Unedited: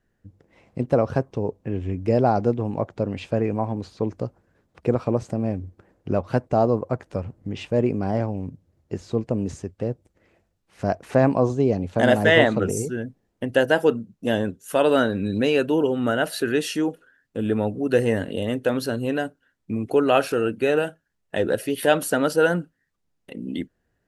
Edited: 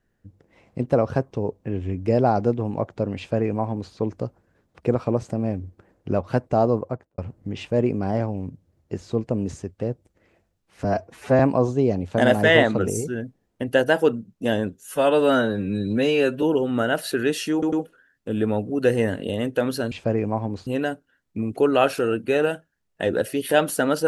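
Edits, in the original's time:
3.18–3.93 copy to 19
6.77–7.18 studio fade out
10.84–11.21 stretch 1.5×
14.65–15.71 stretch 1.5×
16.81 stutter 0.10 s, 3 plays

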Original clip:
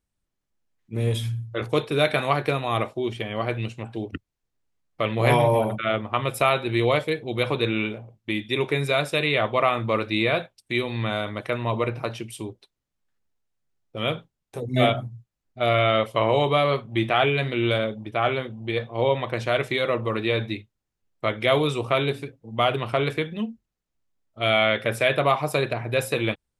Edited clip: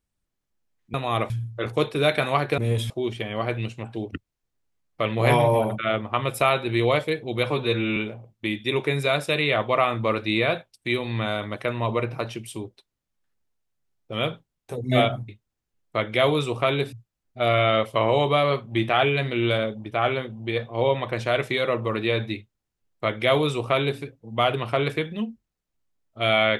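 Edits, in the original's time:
0.94–1.26 swap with 2.54–2.9
7.5–7.81 stretch 1.5×
20.57–22.21 copy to 15.13

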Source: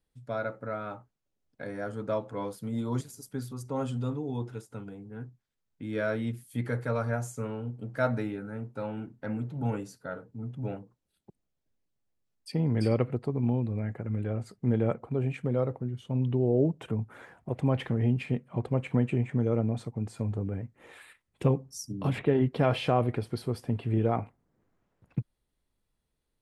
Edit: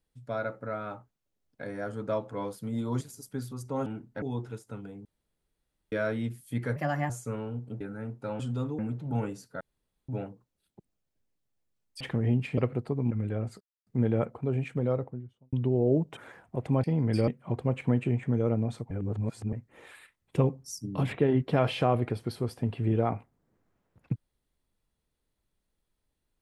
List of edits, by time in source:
3.86–4.25 swap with 8.93–9.29
5.08–5.95 room tone
6.79–7.21 speed 125%
7.92–8.34 cut
10.11–10.59 room tone
12.51–12.95 swap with 17.77–18.34
13.48–14.05 cut
14.55 insert silence 0.26 s
15.53–16.21 studio fade out
16.85–17.1 cut
19.97–20.59 reverse

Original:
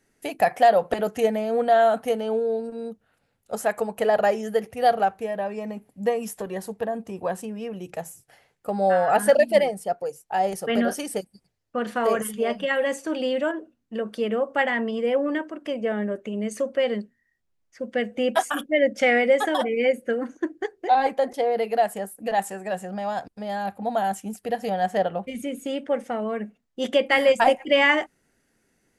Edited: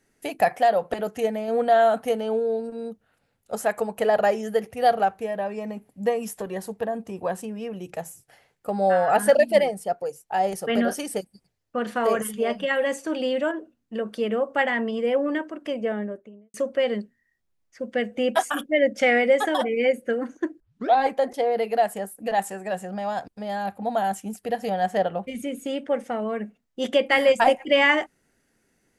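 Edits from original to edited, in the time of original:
0.56–1.48 gain -3 dB
15.75–16.54 studio fade out
20.6 tape start 0.34 s

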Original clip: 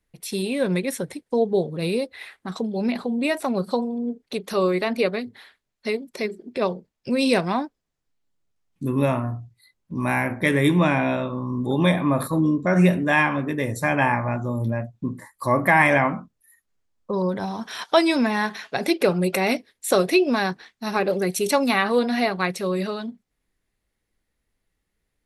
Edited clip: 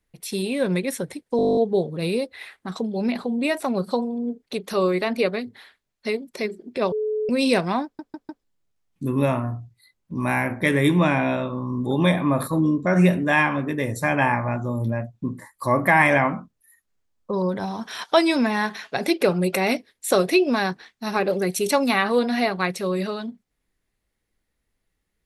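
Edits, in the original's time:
1.37 stutter 0.02 s, 11 plays
6.72–7.09 bleep 429 Hz -21.5 dBFS
7.64 stutter in place 0.15 s, 4 plays

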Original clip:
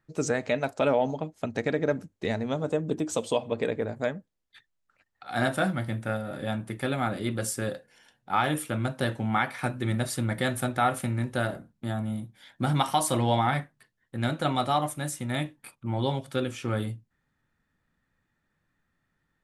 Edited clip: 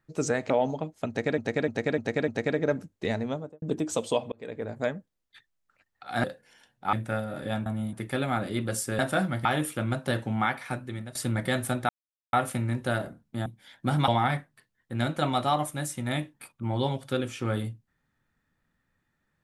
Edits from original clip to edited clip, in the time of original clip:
0.5–0.9 cut
1.48–1.78 loop, 5 plays
2.4–2.82 studio fade out
3.52–4.02 fade in
5.44–5.9 swap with 7.69–8.38
9.09–10.08 fade out equal-power, to -18 dB
10.82 insert silence 0.44 s
11.95–12.22 move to 6.63
12.84–13.31 cut

